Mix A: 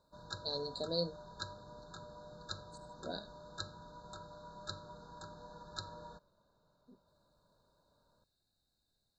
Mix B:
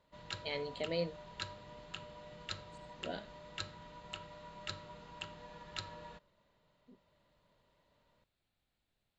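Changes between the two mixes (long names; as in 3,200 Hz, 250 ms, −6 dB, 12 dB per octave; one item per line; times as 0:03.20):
speech: add high shelf with overshoot 1,700 Hz −7 dB, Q 3
master: remove linear-phase brick-wall band-stop 1,700–3,600 Hz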